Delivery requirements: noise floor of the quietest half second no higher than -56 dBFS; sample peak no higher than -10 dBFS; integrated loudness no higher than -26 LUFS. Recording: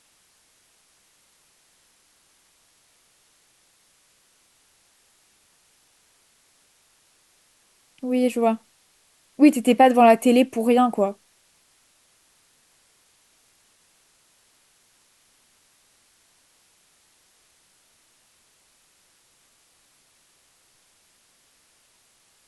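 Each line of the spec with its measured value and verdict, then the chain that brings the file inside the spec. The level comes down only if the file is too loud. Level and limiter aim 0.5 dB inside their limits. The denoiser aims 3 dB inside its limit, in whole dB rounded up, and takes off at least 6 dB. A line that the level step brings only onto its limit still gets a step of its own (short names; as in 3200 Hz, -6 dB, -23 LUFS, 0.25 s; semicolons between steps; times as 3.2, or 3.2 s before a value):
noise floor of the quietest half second -62 dBFS: OK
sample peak -4.0 dBFS: fail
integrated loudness -19.0 LUFS: fail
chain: gain -7.5 dB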